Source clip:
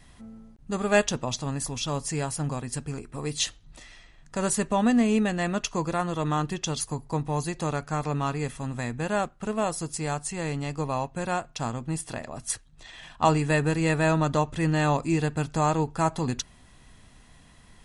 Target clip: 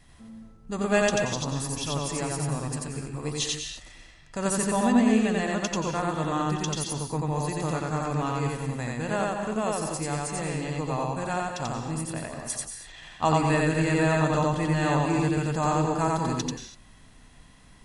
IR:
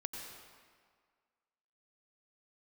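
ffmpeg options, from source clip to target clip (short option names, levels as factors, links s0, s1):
-filter_complex "[0:a]asplit=2[s0][s1];[1:a]atrim=start_sample=2205,afade=t=out:st=0.3:d=0.01,atrim=end_sample=13671,adelay=89[s2];[s1][s2]afir=irnorm=-1:irlink=0,volume=1.26[s3];[s0][s3]amix=inputs=2:normalize=0,volume=0.708"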